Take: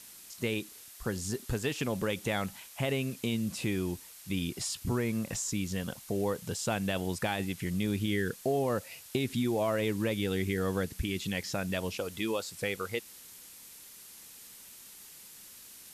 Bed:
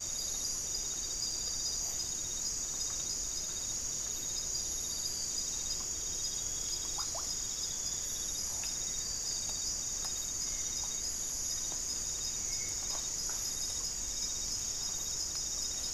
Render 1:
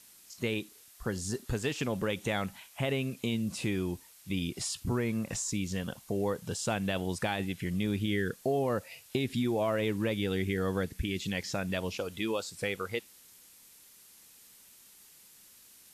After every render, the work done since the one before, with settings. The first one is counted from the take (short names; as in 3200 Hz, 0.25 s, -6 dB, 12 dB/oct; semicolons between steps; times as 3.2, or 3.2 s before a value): noise print and reduce 6 dB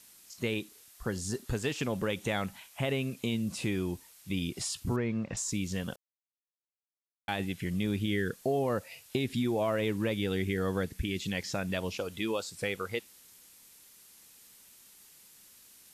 4.96–5.37 air absorption 190 m; 5.96–7.28 mute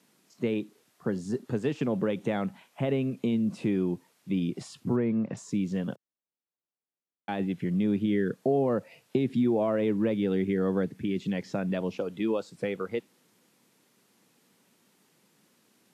Bessel high-pass 240 Hz, order 8; tilt -4.5 dB/oct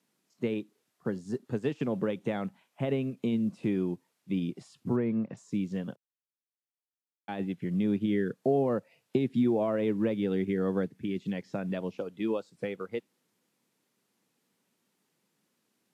upward expander 1.5:1, over -43 dBFS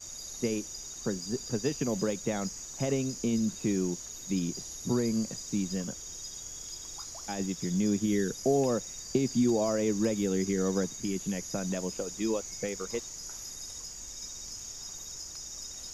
add bed -5.5 dB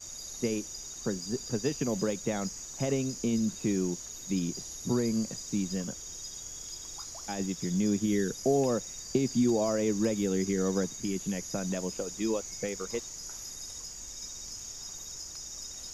nothing audible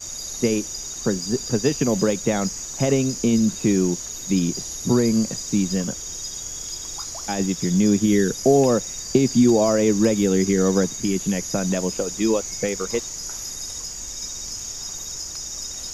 gain +10 dB